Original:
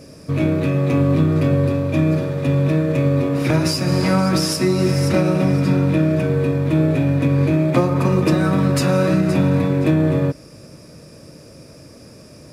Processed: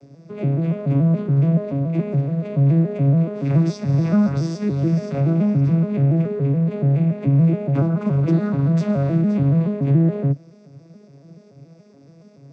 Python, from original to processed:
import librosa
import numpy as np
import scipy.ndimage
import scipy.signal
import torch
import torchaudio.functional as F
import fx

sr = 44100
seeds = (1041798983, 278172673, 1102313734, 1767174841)

y = fx.vocoder_arp(x, sr, chord='minor triad', root=49, every_ms=142)